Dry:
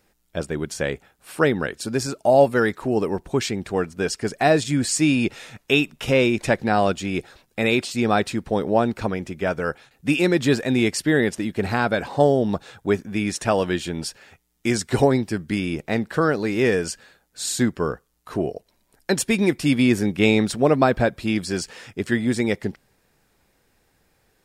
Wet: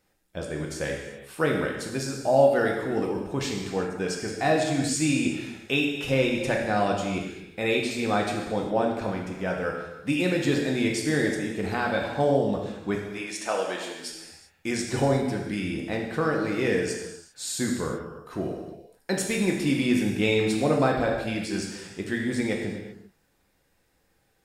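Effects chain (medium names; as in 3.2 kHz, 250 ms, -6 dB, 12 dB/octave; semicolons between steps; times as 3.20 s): 12.95–14.07 s: high-pass 440 Hz 12 dB/octave; gated-style reverb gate 420 ms falling, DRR -0.5 dB; trim -7.5 dB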